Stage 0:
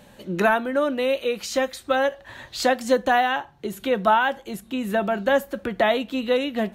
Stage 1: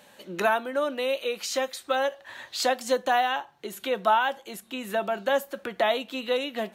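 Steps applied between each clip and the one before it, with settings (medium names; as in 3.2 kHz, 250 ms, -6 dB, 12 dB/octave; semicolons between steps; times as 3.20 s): high-pass 720 Hz 6 dB/octave; dynamic bell 1.8 kHz, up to -5 dB, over -38 dBFS, Q 1.6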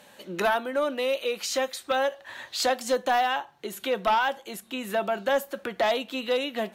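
sine folder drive 4 dB, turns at -11 dBFS; trim -6.5 dB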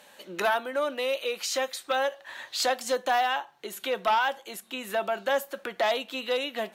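bass shelf 250 Hz -12 dB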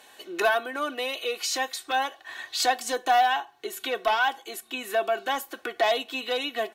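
comb 2.7 ms, depth 81%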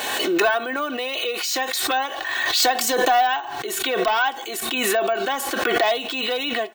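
careless resampling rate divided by 2×, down filtered, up hold; swell ahead of each attack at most 26 dB/s; trim +2.5 dB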